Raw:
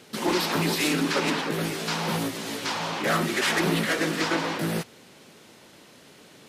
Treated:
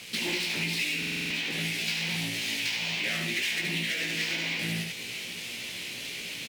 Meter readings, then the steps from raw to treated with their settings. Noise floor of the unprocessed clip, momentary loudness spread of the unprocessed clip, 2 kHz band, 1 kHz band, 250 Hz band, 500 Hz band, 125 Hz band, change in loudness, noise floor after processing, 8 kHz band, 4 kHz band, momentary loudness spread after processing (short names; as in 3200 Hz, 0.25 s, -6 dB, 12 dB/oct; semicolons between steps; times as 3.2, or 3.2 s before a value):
-52 dBFS, 6 LU, -0.5 dB, -16.5 dB, -10.0 dB, -13.5 dB, -6.0 dB, -3.5 dB, -39 dBFS, -2.5 dB, +1.0 dB, 7 LU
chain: self-modulated delay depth 0.073 ms; bell 120 Hz +5 dB 1.8 oct; doubler 17 ms -3.5 dB; echo 72 ms -5 dB; reverse; upward compressor, threshold -32 dBFS; reverse; bit-crush 8-bit; resonant high shelf 1700 Hz +11.5 dB, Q 3; compressor 6:1, threshold -21 dBFS, peak gain reduction 14 dB; stuck buffer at 0.98, samples 2048, times 6; decimation joined by straight lines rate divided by 2×; gain -6.5 dB